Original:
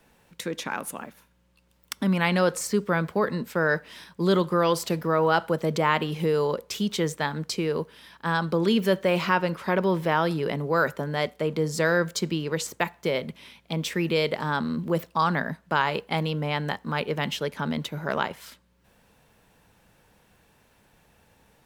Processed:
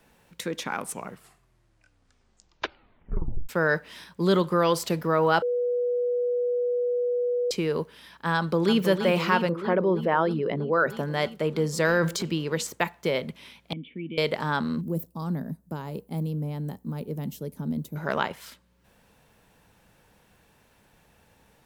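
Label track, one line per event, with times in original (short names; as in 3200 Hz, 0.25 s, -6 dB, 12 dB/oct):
0.600000	0.600000	tape stop 2.89 s
5.420000	7.510000	bleep 488 Hz -22.5 dBFS
8.360000	8.810000	echo throw 0.32 s, feedback 80%, level -8 dB
9.490000	10.900000	formant sharpening exponent 1.5
11.850000	12.260000	transient shaper attack -6 dB, sustain +7 dB
13.730000	14.180000	vocal tract filter i
14.810000	17.960000	EQ curve 250 Hz 0 dB, 1600 Hz -23 dB, 3000 Hz -22 dB, 14000 Hz +5 dB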